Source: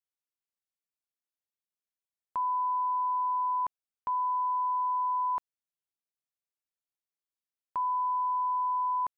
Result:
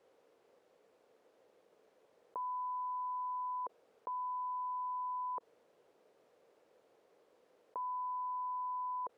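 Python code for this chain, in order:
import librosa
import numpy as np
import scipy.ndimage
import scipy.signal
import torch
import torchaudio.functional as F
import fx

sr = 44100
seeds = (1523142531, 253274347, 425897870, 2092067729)

y = fx.bandpass_q(x, sr, hz=480.0, q=3.9)
y = fx.env_flatten(y, sr, amount_pct=70)
y = F.gain(torch.from_numpy(y), 6.0).numpy()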